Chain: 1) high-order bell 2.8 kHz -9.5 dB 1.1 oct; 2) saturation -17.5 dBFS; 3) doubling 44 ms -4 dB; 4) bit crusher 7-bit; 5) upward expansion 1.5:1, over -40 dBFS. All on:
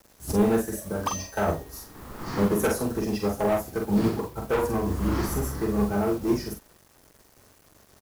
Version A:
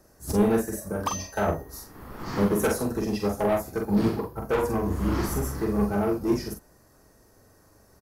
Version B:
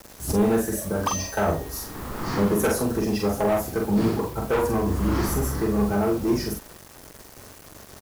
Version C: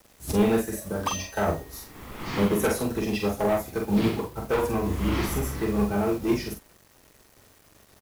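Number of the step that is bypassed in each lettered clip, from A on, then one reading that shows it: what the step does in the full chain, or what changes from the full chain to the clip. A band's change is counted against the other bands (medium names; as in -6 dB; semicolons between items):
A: 4, distortion -22 dB; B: 5, crest factor change -2.5 dB; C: 1, 4 kHz band +4.0 dB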